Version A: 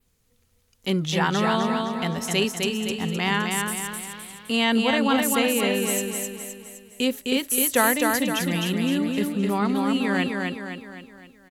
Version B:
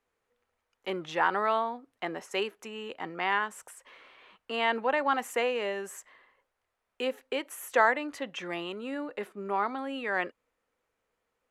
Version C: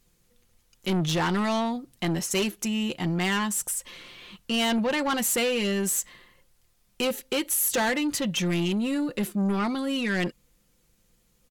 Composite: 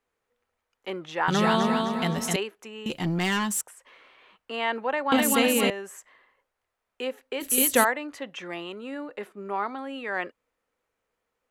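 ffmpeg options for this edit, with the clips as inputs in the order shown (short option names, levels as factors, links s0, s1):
-filter_complex "[0:a]asplit=3[s0][s1][s2];[1:a]asplit=5[s3][s4][s5][s6][s7];[s3]atrim=end=1.282[s8];[s0]atrim=start=1.278:end=2.362[s9];[s4]atrim=start=2.358:end=2.862[s10];[2:a]atrim=start=2.858:end=3.612[s11];[s5]atrim=start=3.608:end=5.122[s12];[s1]atrim=start=5.118:end=5.702[s13];[s6]atrim=start=5.698:end=7.42[s14];[s2]atrim=start=7.4:end=7.85[s15];[s7]atrim=start=7.83[s16];[s8][s9]acrossfade=d=0.004:c1=hsin:c2=hsin[s17];[s17][s10]acrossfade=d=0.004:c1=hsin:c2=hsin[s18];[s18][s11]acrossfade=d=0.004:c1=hsin:c2=hsin[s19];[s19][s12]acrossfade=d=0.004:c1=hsin:c2=hsin[s20];[s20][s13]acrossfade=d=0.004:c1=hsin:c2=hsin[s21];[s21][s14]acrossfade=d=0.004:c1=hsin:c2=hsin[s22];[s22][s15]acrossfade=d=0.02:c1=tri:c2=tri[s23];[s23][s16]acrossfade=d=0.02:c1=tri:c2=tri"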